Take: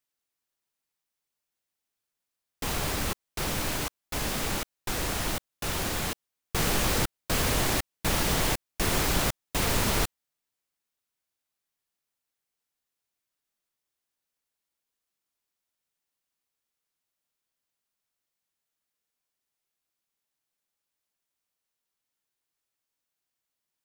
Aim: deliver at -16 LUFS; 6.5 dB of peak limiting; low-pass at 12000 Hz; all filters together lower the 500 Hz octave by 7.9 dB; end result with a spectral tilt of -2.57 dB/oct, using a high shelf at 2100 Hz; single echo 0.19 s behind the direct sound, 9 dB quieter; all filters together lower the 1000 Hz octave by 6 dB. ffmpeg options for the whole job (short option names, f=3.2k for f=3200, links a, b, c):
-af "lowpass=12k,equalizer=f=500:t=o:g=-9,equalizer=f=1k:t=o:g=-6,highshelf=f=2.1k:g=3.5,alimiter=limit=-19dB:level=0:latency=1,aecho=1:1:190:0.355,volume=14dB"